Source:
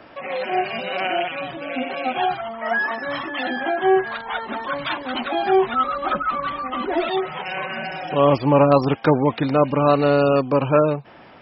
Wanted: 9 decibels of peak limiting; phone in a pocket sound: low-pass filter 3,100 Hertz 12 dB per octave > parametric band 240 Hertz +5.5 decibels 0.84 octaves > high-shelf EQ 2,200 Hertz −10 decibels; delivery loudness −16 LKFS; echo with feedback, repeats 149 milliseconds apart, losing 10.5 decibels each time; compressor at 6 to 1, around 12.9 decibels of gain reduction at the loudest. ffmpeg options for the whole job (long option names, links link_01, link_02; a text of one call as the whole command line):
ffmpeg -i in.wav -af "acompressor=threshold=-25dB:ratio=6,alimiter=limit=-23dB:level=0:latency=1,lowpass=3100,equalizer=frequency=240:width_type=o:width=0.84:gain=5.5,highshelf=frequency=2200:gain=-10,aecho=1:1:149|298|447:0.299|0.0896|0.0269,volume=15.5dB" out.wav